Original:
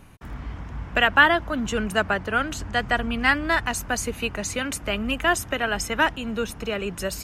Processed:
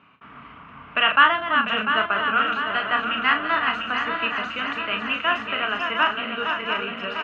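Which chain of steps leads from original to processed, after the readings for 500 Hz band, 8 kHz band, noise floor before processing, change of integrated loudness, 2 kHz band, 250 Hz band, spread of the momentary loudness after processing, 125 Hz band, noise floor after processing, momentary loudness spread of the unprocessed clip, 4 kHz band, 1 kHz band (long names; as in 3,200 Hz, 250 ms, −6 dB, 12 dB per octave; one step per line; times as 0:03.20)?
−4.0 dB, below −25 dB, −40 dBFS, +1.5 dB, +1.5 dB, −5.0 dB, 9 LU, −12.5 dB, −45 dBFS, 10 LU, +4.0 dB, +4.0 dB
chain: feedback delay that plays each chunk backwards 348 ms, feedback 78%, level −6 dB
loudspeaker in its box 310–2,900 Hz, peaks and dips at 350 Hz −10 dB, 530 Hz −9 dB, 800 Hz −8 dB, 1,200 Hz +8 dB, 1,800 Hz −5 dB, 2,800 Hz +6 dB
double-tracking delay 36 ms −6.5 dB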